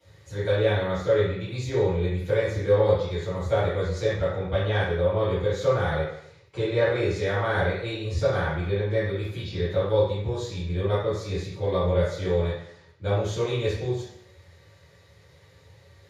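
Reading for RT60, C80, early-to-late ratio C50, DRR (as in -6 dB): 0.70 s, 5.0 dB, 1.5 dB, -15.0 dB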